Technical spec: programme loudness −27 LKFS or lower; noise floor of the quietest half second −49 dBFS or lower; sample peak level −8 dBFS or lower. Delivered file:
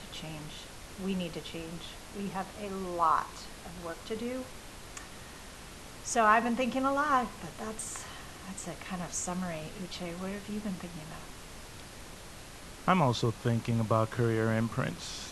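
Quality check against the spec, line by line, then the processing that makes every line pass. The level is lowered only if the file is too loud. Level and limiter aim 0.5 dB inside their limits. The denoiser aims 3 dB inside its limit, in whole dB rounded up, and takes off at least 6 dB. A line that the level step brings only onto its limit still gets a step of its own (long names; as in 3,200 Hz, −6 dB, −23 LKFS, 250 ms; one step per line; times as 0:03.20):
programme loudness −32.5 LKFS: in spec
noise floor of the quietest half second −47 dBFS: out of spec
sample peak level −10.0 dBFS: in spec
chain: broadband denoise 6 dB, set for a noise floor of −47 dBFS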